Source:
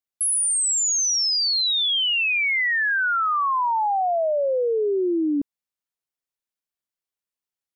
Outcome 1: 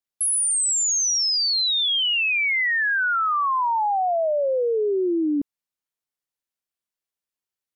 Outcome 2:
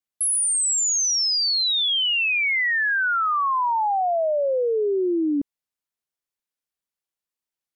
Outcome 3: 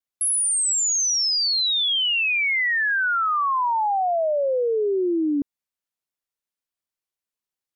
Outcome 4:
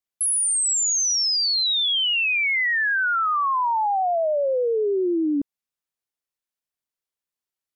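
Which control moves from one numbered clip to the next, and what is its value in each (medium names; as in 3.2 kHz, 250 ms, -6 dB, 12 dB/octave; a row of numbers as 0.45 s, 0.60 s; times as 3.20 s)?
vibrato, rate: 6.2 Hz, 1.4 Hz, 0.36 Hz, 10 Hz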